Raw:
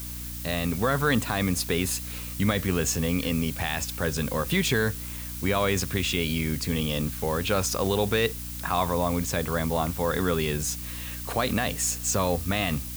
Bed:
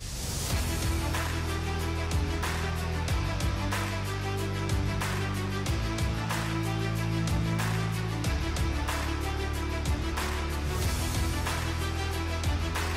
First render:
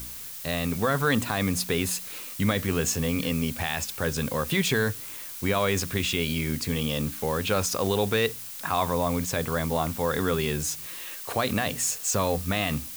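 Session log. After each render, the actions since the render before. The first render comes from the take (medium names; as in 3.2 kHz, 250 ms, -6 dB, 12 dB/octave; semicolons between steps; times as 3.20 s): de-hum 60 Hz, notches 5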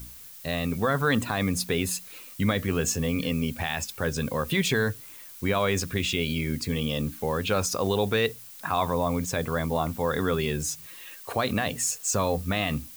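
noise reduction 8 dB, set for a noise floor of -39 dBFS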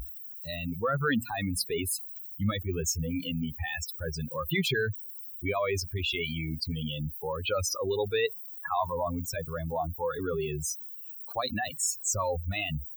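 expander on every frequency bin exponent 3; level flattener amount 50%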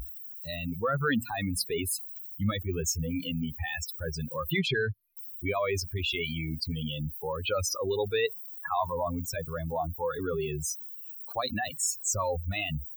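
4.59–5.17 s: low-pass 4.9 kHz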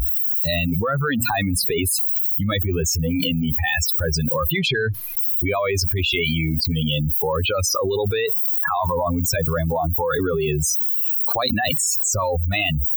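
in parallel at +0.5 dB: peak limiter -26.5 dBFS, peak gain reduction 9 dB; on the sum: level flattener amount 100%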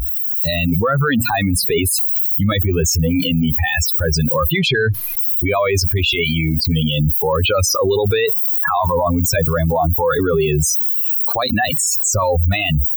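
level rider; peak limiter -8.5 dBFS, peak gain reduction 7 dB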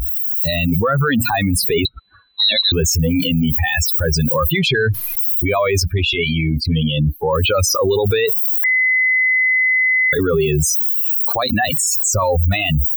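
1.85–2.72 s: frequency inversion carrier 4 kHz; 5.83–7.33 s: distance through air 71 m; 8.64–10.13 s: bleep 2.03 kHz -12 dBFS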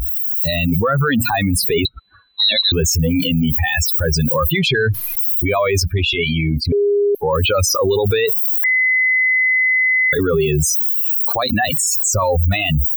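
6.72–7.15 s: bleep 407 Hz -12 dBFS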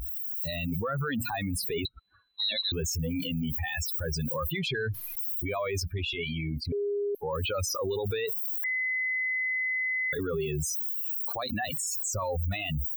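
trim -14.5 dB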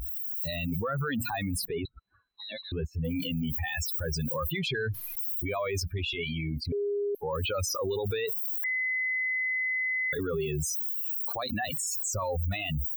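1.65–3.05 s: distance through air 460 m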